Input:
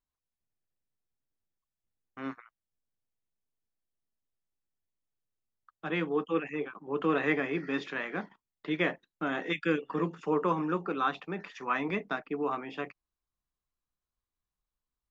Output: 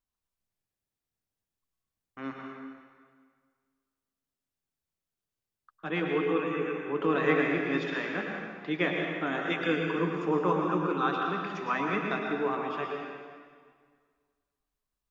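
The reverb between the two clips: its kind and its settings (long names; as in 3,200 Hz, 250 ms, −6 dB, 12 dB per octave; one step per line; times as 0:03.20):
dense smooth reverb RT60 1.8 s, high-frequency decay 0.9×, pre-delay 95 ms, DRR 0.5 dB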